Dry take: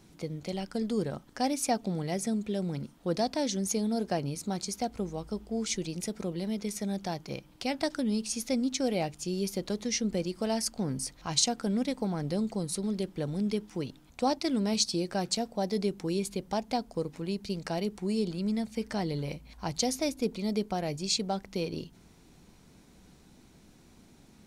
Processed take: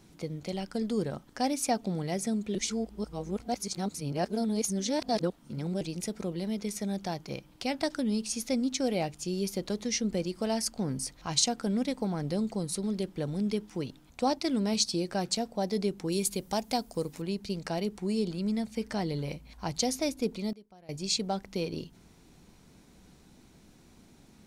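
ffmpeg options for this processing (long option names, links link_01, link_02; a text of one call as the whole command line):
ffmpeg -i in.wav -filter_complex "[0:a]asettb=1/sr,asplit=3[link_01][link_02][link_03];[link_01]atrim=end=16.124[link_04];[link_02]atrim=start=16.12:end=17.22,asetpts=PTS-STARTPTS,afade=type=in:duration=0.004:curve=qsin,afade=type=out:start_time=1.096:duration=0.004:curve=qsin,aemphasis=mode=production:type=50kf[link_05];[link_03]atrim=start=17.216[link_06];[link_04][link_05]acrossfade=duration=0.004:curve1=hsin:curve2=qsin[link_07];[link_07][link_06]acrossfade=duration=0.004:curve1=qsin:curve2=hsin,asplit=5[link_08][link_09][link_10][link_11][link_12];[link_08]atrim=end=2.552[link_13];[link_09]atrim=start=2.548:end=5.812,asetpts=PTS-STARTPTS,areverse[link_14];[link_10]atrim=start=5.808:end=20.53,asetpts=PTS-STARTPTS,afade=type=out:start_time=14.302:duration=0.42:curve=log:silence=0.0707946[link_15];[link_11]atrim=start=20.53:end=20.89,asetpts=PTS-STARTPTS,volume=-23dB[link_16];[link_12]atrim=start=20.89,asetpts=PTS-STARTPTS,afade=type=in:duration=0.42:curve=log:silence=0.0707946[link_17];[link_13][link_14]acrossfade=duration=0.004:curve1=hsin:curve2=hsin[link_18];[link_15][link_16][link_17]concat=n=3:v=0:a=1[link_19];[link_18][link_19]acrossfade=duration=0.004:curve1=hsin:curve2=hsin" out.wav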